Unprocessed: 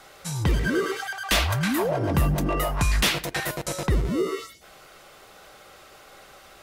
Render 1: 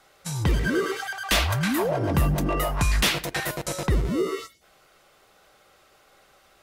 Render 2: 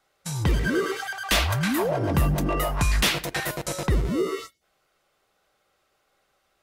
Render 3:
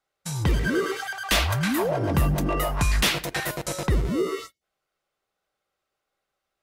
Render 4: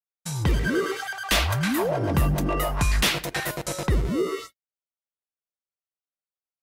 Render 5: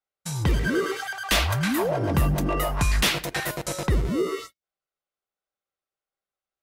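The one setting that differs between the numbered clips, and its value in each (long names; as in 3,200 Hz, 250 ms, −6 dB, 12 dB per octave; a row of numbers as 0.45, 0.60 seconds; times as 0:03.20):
noise gate, range: −9, −21, −33, −59, −46 decibels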